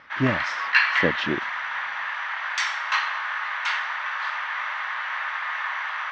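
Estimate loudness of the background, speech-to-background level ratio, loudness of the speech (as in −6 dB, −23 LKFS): −25.5 LKFS, −2.5 dB, −28.0 LKFS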